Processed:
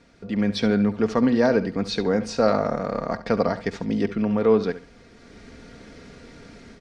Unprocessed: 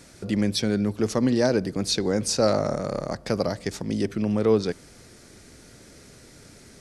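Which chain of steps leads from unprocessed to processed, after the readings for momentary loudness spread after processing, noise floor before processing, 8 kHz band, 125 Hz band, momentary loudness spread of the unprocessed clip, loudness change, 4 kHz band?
8 LU, -50 dBFS, -11.5 dB, -1.0 dB, 8 LU, +2.0 dB, -4.0 dB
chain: LPF 3400 Hz 12 dB/oct; comb 4.3 ms, depth 41%; dynamic EQ 1200 Hz, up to +5 dB, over -37 dBFS, Q 0.74; AGC gain up to 10.5 dB; on a send: flutter echo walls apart 11.8 m, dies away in 0.3 s; on the sum: gain -5.5 dB

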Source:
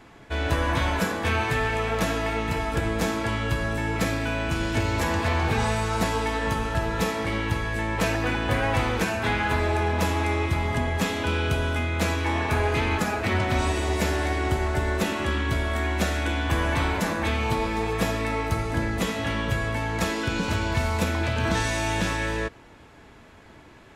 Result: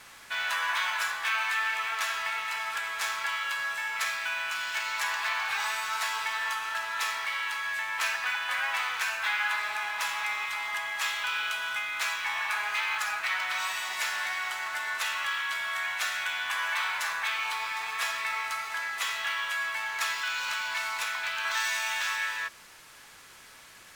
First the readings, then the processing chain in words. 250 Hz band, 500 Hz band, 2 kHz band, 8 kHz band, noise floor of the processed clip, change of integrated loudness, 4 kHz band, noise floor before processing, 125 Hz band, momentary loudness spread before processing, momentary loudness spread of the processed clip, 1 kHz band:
under -35 dB, -21.0 dB, +1.0 dB, -0.5 dB, -52 dBFS, -4.0 dB, +0.5 dB, -49 dBFS, under -40 dB, 3 LU, 4 LU, -4.5 dB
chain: HPF 1100 Hz 24 dB/oct; in parallel at 0 dB: vocal rider 2 s; on the sum: requantised 8-bit, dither triangular; decimation joined by straight lines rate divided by 2×; gain -5 dB

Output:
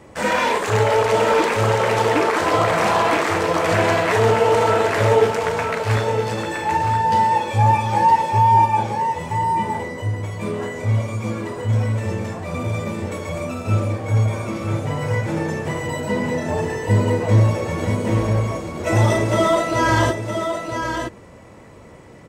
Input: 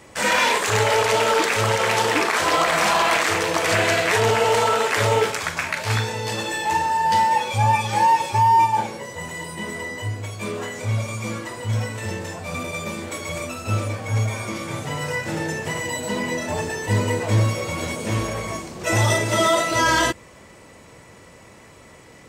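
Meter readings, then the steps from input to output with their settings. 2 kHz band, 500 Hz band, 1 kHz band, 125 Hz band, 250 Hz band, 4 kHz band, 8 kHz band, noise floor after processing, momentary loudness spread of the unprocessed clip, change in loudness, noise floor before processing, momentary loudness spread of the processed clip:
-2.0 dB, +4.0 dB, +2.0 dB, +5.0 dB, +5.0 dB, -4.5 dB, -6.0 dB, -43 dBFS, 12 LU, +1.5 dB, -47 dBFS, 10 LU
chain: tilt shelf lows +6 dB, about 1500 Hz; echo 0.966 s -6.5 dB; gain -1.5 dB

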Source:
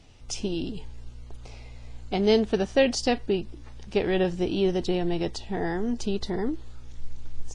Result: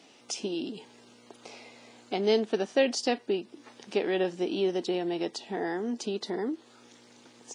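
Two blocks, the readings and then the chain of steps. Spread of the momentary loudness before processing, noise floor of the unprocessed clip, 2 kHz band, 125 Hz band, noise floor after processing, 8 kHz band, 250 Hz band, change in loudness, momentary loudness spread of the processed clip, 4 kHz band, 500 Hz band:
23 LU, -44 dBFS, -2.5 dB, -11.5 dB, -57 dBFS, -1.5 dB, -5.0 dB, -3.5 dB, 21 LU, -2.5 dB, -3.0 dB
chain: HPF 230 Hz 24 dB/oct; in parallel at +2.5 dB: compressor, threshold -42 dBFS, peak gain reduction 24 dB; on the sum: gain -4 dB

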